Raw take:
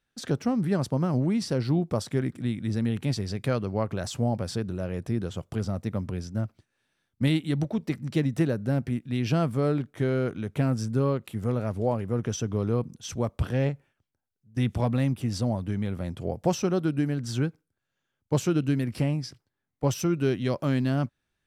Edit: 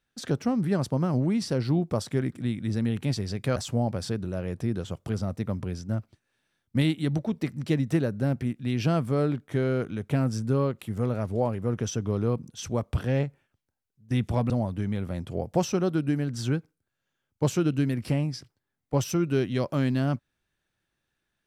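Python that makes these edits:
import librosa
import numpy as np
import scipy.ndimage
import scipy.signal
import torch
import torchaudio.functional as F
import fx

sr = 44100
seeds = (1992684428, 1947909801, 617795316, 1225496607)

y = fx.edit(x, sr, fx.cut(start_s=3.56, length_s=0.46),
    fx.cut(start_s=14.96, length_s=0.44), tone=tone)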